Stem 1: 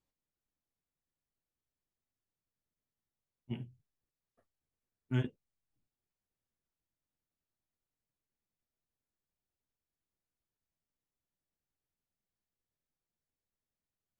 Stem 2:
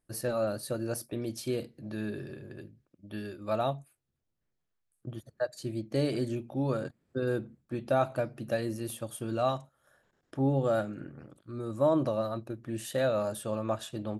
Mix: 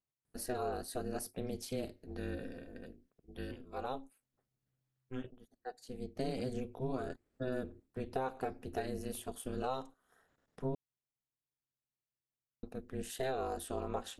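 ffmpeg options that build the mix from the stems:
-filter_complex "[0:a]volume=-6dB,asplit=2[a][b];[1:a]adelay=250,volume=-1.5dB,asplit=3[c][d][e];[c]atrim=end=10.75,asetpts=PTS-STARTPTS,afade=t=out:st=10.746:d=0.004:c=hsin[f];[d]atrim=start=10.75:end=12.63,asetpts=PTS-STARTPTS,volume=0[g];[e]atrim=start=12.63,asetpts=PTS-STARTPTS,afade=t=in:d=0.004:c=hsin[h];[f][g][h]concat=n=3:v=0:a=1[i];[b]apad=whole_len=637172[j];[i][j]sidechaincompress=threshold=-48dB:ratio=8:attack=7.9:release=922[k];[a][k]amix=inputs=2:normalize=0,aeval=exprs='val(0)*sin(2*PI*130*n/s)':c=same,acompressor=threshold=-32dB:ratio=6"

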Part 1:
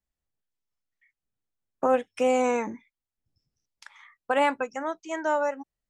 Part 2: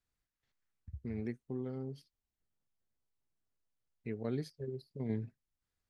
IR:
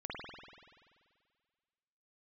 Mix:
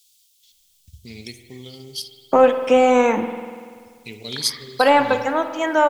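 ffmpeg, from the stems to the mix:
-filter_complex "[0:a]deesser=0.95,lowpass=6.1k,acontrast=75,adelay=500,volume=1dB,asplit=2[a][b];[b]volume=-7.5dB[c];[1:a]aexciter=amount=16:drive=9.9:freq=2.8k,volume=-2dB,asplit=2[d][e];[e]volume=-5.5dB[f];[2:a]atrim=start_sample=2205[g];[c][f]amix=inputs=2:normalize=0[h];[h][g]afir=irnorm=-1:irlink=0[i];[a][d][i]amix=inputs=3:normalize=0,equalizer=f=3.3k:t=o:w=0.29:g=6"

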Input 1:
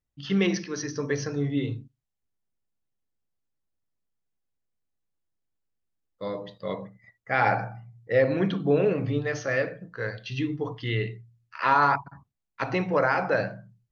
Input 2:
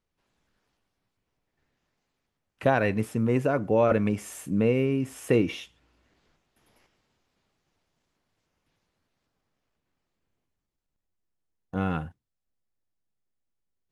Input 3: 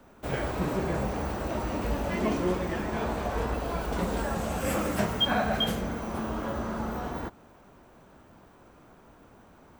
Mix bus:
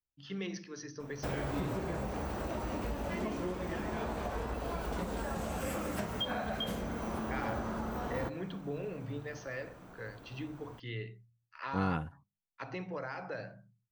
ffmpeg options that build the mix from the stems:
-filter_complex "[0:a]bandreject=f=50:t=h:w=6,bandreject=f=100:t=h:w=6,bandreject=f=150:t=h:w=6,bandreject=f=200:t=h:w=6,acrossover=split=180|3000[a][b][c];[b]acompressor=threshold=-26dB:ratio=3[d];[a][d][c]amix=inputs=3:normalize=0,volume=-12.5dB,asplit=2[e][f];[1:a]volume=-4.5dB[g];[2:a]acompressor=threshold=-34dB:ratio=6,adelay=1000,volume=0.5dB[h];[f]apad=whole_len=613673[i];[g][i]sidechaingate=range=-33dB:threshold=-58dB:ratio=16:detection=peak[j];[e][j][h]amix=inputs=3:normalize=0"

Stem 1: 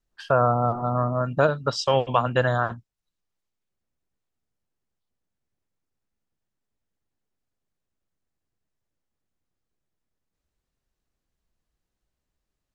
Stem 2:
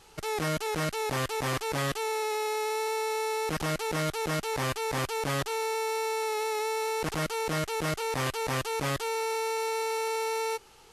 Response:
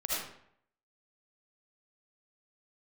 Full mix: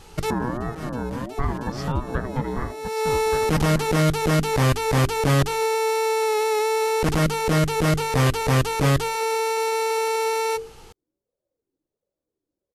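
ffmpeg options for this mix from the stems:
-filter_complex "[0:a]equalizer=f=2.3k:t=o:w=0.78:g=-11.5,aeval=exprs='val(0)*sin(2*PI*440*n/s+440*0.3/1.4*sin(2*PI*1.4*n/s))':c=same,volume=-12.5dB,asplit=3[a][b][c];[b]volume=-6dB[d];[1:a]bandreject=f=50:t=h:w=6,bandreject=f=100:t=h:w=6,bandreject=f=150:t=h:w=6,bandreject=f=200:t=h:w=6,bandreject=f=250:t=h:w=6,bandreject=f=300:t=h:w=6,bandreject=f=350:t=h:w=6,bandreject=f=400:t=h:w=6,bandreject=f=450:t=h:w=6,volume=1dB[e];[c]apad=whole_len=481740[f];[e][f]sidechaincompress=threshold=-52dB:ratio=10:attack=7:release=327[g];[d]aecho=0:1:1179:1[h];[a][g][h]amix=inputs=3:normalize=0,lowshelf=f=320:g=11.5,acontrast=28"

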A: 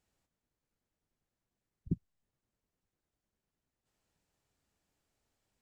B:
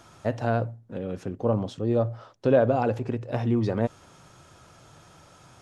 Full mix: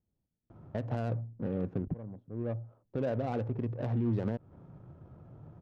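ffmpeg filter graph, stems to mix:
-filter_complex "[0:a]volume=-0.5dB,asplit=2[a][b];[1:a]adelay=500,volume=-0.5dB[c];[b]apad=whole_len=269712[d];[c][d]sidechaincompress=threshold=-50dB:ratio=5:attack=9.8:release=1080[e];[a][e]amix=inputs=2:normalize=0,equalizer=f=140:w=0.58:g=6,adynamicsmooth=sensitivity=3:basefreq=520,alimiter=limit=-23.5dB:level=0:latency=1:release=220"

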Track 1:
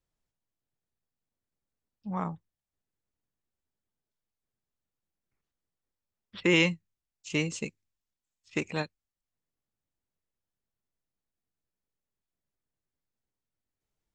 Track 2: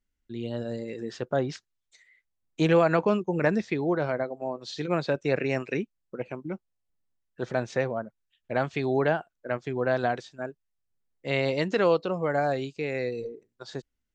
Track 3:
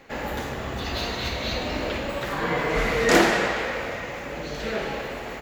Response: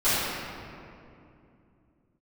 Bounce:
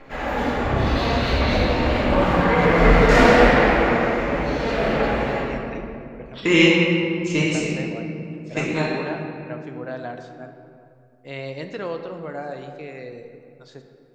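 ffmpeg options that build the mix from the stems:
-filter_complex "[0:a]volume=0.5dB,asplit=2[a][b];[b]volume=-8.5dB[c];[1:a]volume=-7.5dB,asplit=2[d][e];[e]volume=-22dB[f];[2:a]aemphasis=mode=reproduction:type=50fm,asoftclip=type=tanh:threshold=-11.5dB,aphaser=in_gain=1:out_gain=1:delay=4.4:decay=0.62:speed=1.4:type=sinusoidal,volume=-8dB,asplit=2[g][h];[h]volume=-4dB[i];[3:a]atrim=start_sample=2205[j];[c][f][i]amix=inputs=3:normalize=0[k];[k][j]afir=irnorm=-1:irlink=0[l];[a][d][g][l]amix=inputs=4:normalize=0"

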